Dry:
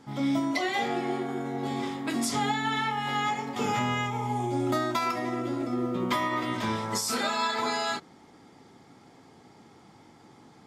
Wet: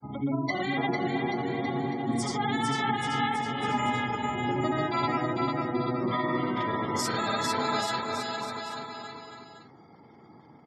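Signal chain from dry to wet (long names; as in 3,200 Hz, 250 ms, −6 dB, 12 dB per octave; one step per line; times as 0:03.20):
sub-octave generator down 1 octave, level −1 dB
high-pass filter 150 Hz 12 dB per octave
gate on every frequency bin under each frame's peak −20 dB strong
granular cloud, pitch spread up and down by 0 semitones
bouncing-ball delay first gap 450 ms, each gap 0.85×, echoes 5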